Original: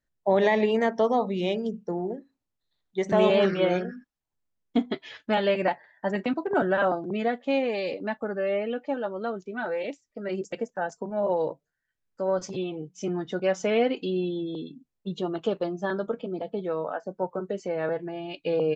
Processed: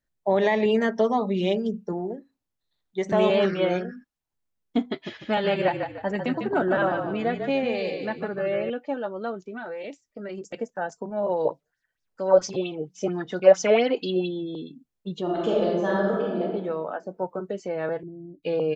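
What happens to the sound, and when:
0:00.65–0:01.93: comb filter 5 ms, depth 62%
0:04.90–0:08.70: echo with shifted repeats 149 ms, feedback 34%, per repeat −34 Hz, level −6 dB
0:09.34–0:10.54: downward compressor, threshold −31 dBFS
0:11.45–0:14.28: auto-filter bell 4.4 Hz 500–5,800 Hz +14 dB
0:15.22–0:16.42: thrown reverb, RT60 1.3 s, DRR −4 dB
0:18.03–0:18.43: inverse Chebyshev low-pass filter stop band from 1,900 Hz, stop band 80 dB

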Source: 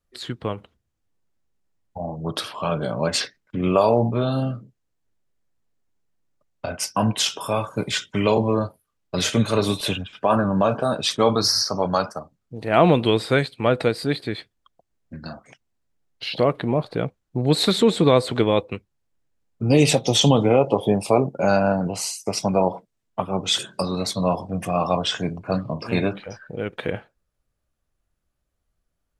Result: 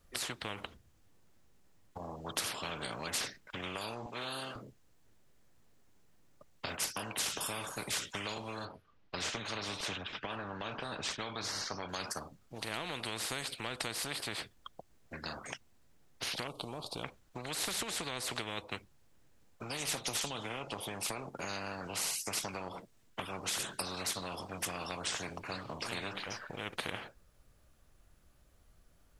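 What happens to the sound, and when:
0:04.06–0:04.56: high-pass filter 440 Hz
0:08.65–0:11.89: high-frequency loss of the air 200 metres
0:16.47–0:17.04: Butterworth band-reject 1,800 Hz, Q 0.52
whole clip: downward compressor, threshold −21 dBFS; every bin compressed towards the loudest bin 4 to 1; level −8 dB

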